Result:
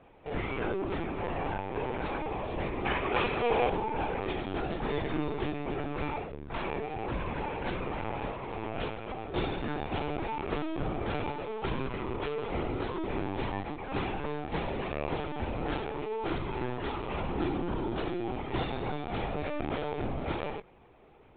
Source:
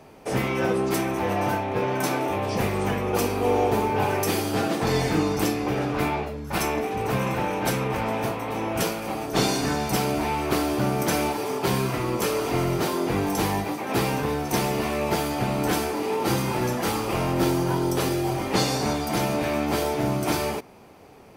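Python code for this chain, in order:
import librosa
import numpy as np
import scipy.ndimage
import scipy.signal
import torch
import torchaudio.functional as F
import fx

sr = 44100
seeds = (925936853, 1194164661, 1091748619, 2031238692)

y = fx.lpc_vocoder(x, sr, seeds[0], excitation='pitch_kept', order=16)
y = fx.peak_eq(y, sr, hz=2300.0, db=11.0, octaves=2.9, at=(2.85, 3.7))
y = F.gain(torch.from_numpy(y), -8.5).numpy()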